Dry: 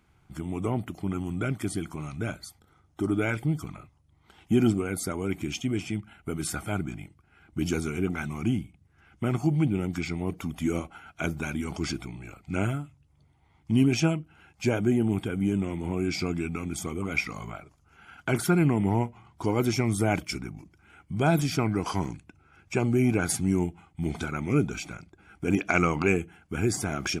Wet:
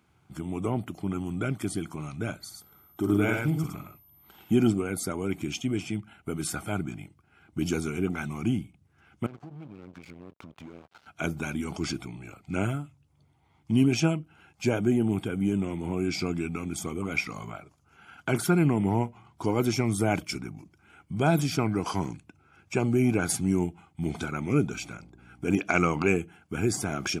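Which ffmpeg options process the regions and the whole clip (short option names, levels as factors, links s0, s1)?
-filter_complex "[0:a]asettb=1/sr,asplit=3[s0][s1][s2];[s0]atrim=end=2.404[s3];[s1]atrim=start=2.4:end=4.53,asetpts=PTS-STARTPTS,afade=t=in:d=0.004:c=qsin,afade=t=out:st=2.126:d=0.004:c=qsin,bandreject=f=530:w=17,aeval=exprs='val(0)+0.001*sin(2*PI*13000*n/s)':c=same,aecho=1:1:49|108:0.447|0.668,atrim=end_sample=93933[s4];[s2]atrim=start=4.526[s5];[s3][s4]acrossfade=d=0.004:c1=hsin:c2=qsin[s6];[s6][s5]acrossfade=d=0.004:c1=qsin:c2=hsin,asettb=1/sr,asplit=3[s7][s8][s9];[s7]atrim=end=9.264[s10];[s8]atrim=start=9.26:end=11.07,asetpts=PTS-STARTPTS,afade=t=in:d=0.004:c=qsin,afade=t=out:st=1.806:d=0.004:c=qsin,lowpass=3100,acompressor=threshold=0.0126:ratio=6:attack=3.2:release=140:knee=1:detection=peak,aeval=exprs='sgn(val(0))*max(abs(val(0))-0.00473,0)':c=same[s11];[s9]atrim=start=11.066[s12];[s10][s11]acrossfade=d=0.004:c1=hsin:c2=qsin[s13];[s13][s12]acrossfade=d=0.004:c1=qsin:c2=hsin,asettb=1/sr,asplit=3[s14][s15][s16];[s14]atrim=end=24.744[s17];[s15]atrim=start=24.74:end=25.49,asetpts=PTS-STARTPTS,afade=t=in:d=0.004:c=qsin,afade=t=out:st=0.746:d=0.004:c=qsin,bandreject=f=52.41:t=h:w=4,bandreject=f=104.82:t=h:w=4,bandreject=f=157.23:t=h:w=4,bandreject=f=209.64:t=h:w=4,bandreject=f=262.05:t=h:w=4,bandreject=f=314.46:t=h:w=4,bandreject=f=366.87:t=h:w=4,bandreject=f=419.28:t=h:w=4,bandreject=f=471.69:t=h:w=4,bandreject=f=524.1:t=h:w=4,bandreject=f=576.51:t=h:w=4,bandreject=f=628.92:t=h:w=4,bandreject=f=681.33:t=h:w=4,bandreject=f=733.74:t=h:w=4,bandreject=f=786.15:t=h:w=4,bandreject=f=838.56:t=h:w=4,bandreject=f=890.97:t=h:w=4,bandreject=f=943.38:t=h:w=4,bandreject=f=995.79:t=h:w=4,bandreject=f=1048.2:t=h:w=4,bandreject=f=1100.61:t=h:w=4,bandreject=f=1153.02:t=h:w=4,aeval=exprs='val(0)+0.00316*(sin(2*PI*60*n/s)+sin(2*PI*2*60*n/s)/2+sin(2*PI*3*60*n/s)/3+sin(2*PI*4*60*n/s)/4+sin(2*PI*5*60*n/s)/5)':c=same[s18];[s16]atrim=start=25.486[s19];[s17][s18]acrossfade=d=0.004:c1=hsin:c2=qsin[s20];[s20][s19]acrossfade=d=0.004:c1=qsin:c2=hsin,highpass=88,equalizer=f=1900:w=4.5:g=-4"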